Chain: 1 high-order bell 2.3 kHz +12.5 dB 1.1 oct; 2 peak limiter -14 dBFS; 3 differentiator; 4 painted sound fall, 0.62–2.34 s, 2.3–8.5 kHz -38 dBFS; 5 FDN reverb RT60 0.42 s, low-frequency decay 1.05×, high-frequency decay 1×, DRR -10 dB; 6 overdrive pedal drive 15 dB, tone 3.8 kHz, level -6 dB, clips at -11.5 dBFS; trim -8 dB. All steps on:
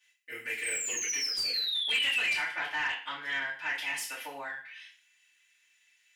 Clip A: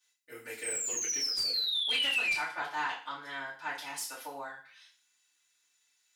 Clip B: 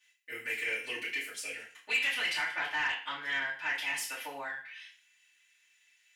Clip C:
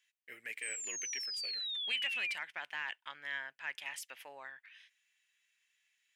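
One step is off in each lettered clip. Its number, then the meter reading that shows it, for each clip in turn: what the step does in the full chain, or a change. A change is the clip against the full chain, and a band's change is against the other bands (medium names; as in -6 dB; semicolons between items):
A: 1, 2 kHz band -5.5 dB; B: 4, 8 kHz band -10.0 dB; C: 5, crest factor change +4.0 dB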